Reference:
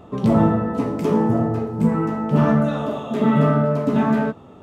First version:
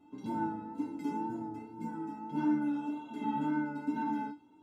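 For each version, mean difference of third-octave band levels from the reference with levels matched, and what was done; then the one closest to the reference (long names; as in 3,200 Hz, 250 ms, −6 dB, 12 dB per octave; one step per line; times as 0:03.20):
6.0 dB: tuned comb filter 300 Hz, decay 0.2 s, harmonics odd, mix 100%
tape wow and flutter 29 cents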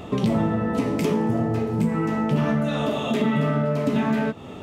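4.5 dB: high shelf with overshoot 1,700 Hz +6 dB, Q 1.5
downward compressor 4 to 1, threshold −28 dBFS, peak gain reduction 14 dB
level +7 dB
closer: second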